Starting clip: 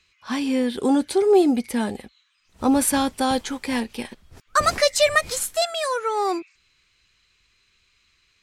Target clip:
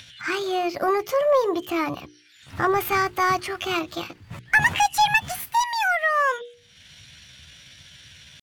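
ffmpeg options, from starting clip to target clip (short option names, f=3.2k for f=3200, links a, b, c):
-filter_complex "[0:a]asetrate=62367,aresample=44100,atempo=0.707107,bandreject=f=60:t=h:w=6,bandreject=f=120:t=h:w=6,bandreject=f=180:t=h:w=6,bandreject=f=240:t=h:w=6,bandreject=f=300:t=h:w=6,bandreject=f=360:t=h:w=6,bandreject=f=420:t=h:w=6,bandreject=f=480:t=h:w=6,asplit=2[a][b];[b]acompressor=threshold=-35dB:ratio=6,volume=2dB[c];[a][c]amix=inputs=2:normalize=0,highpass=120,acompressor=mode=upward:threshold=-34dB:ratio=2.5,equalizer=f=400:w=0.72:g=-11.5,asoftclip=type=tanh:threshold=-14dB,bass=f=250:g=5,treble=f=4k:g=-14,volume=5dB"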